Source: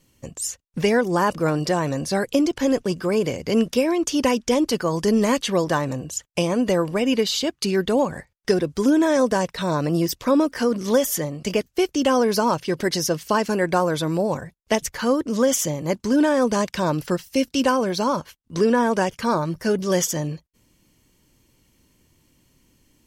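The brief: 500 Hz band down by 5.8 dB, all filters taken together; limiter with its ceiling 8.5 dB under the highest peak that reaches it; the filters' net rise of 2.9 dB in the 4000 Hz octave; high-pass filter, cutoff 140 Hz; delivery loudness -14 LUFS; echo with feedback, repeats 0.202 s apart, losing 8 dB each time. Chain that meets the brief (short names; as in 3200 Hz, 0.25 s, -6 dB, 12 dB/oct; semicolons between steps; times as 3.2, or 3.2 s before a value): HPF 140 Hz; bell 500 Hz -7 dB; bell 4000 Hz +4 dB; limiter -15 dBFS; feedback echo 0.202 s, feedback 40%, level -8 dB; gain +11 dB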